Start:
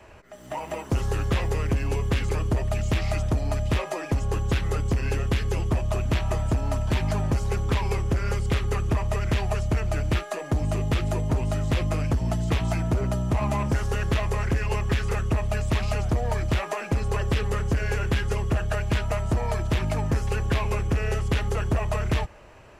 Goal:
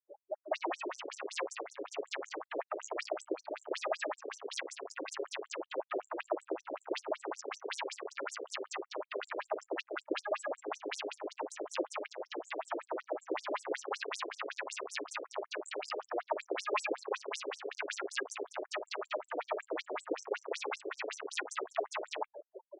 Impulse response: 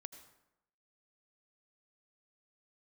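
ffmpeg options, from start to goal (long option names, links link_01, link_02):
-filter_complex "[0:a]afftfilt=real='re*gte(hypot(re,im),0.0112)':imag='im*gte(hypot(re,im),0.0112)':win_size=1024:overlap=0.75,aecho=1:1:5.6:0.37,asplit=2[link_01][link_02];[link_02]alimiter=level_in=2dB:limit=-24dB:level=0:latency=1:release=128,volume=-2dB,volume=2dB[link_03];[link_01][link_03]amix=inputs=2:normalize=0,asoftclip=type=tanh:threshold=-27dB,afftfilt=real='re*between(b*sr/1024,400*pow(8000/400,0.5+0.5*sin(2*PI*5.3*pts/sr))/1.41,400*pow(8000/400,0.5+0.5*sin(2*PI*5.3*pts/sr))*1.41)':imag='im*between(b*sr/1024,400*pow(8000/400,0.5+0.5*sin(2*PI*5.3*pts/sr))/1.41,400*pow(8000/400,0.5+0.5*sin(2*PI*5.3*pts/sr))*1.41)':win_size=1024:overlap=0.75,volume=5.5dB"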